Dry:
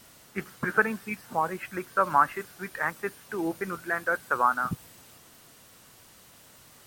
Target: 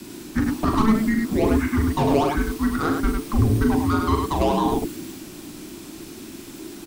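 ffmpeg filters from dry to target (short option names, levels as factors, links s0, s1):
-filter_complex "[0:a]asplit=2[s0][s1];[s1]highpass=f=720:p=1,volume=14.1,asoftclip=type=tanh:threshold=0.422[s2];[s0][s2]amix=inputs=2:normalize=0,lowpass=f=2300:p=1,volume=0.501,equalizer=f=1400:t=o:w=3:g=-11.5,acrossover=split=180|2100[s3][s4][s5];[s3]aeval=exprs='0.0708*sin(PI/2*6.31*val(0)/0.0708)':c=same[s6];[s5]acompressor=threshold=0.0112:ratio=6[s7];[s6][s4][s7]amix=inputs=3:normalize=0,aecho=1:1:40.82|102:0.501|0.631,afreqshift=-440,volume=1.58"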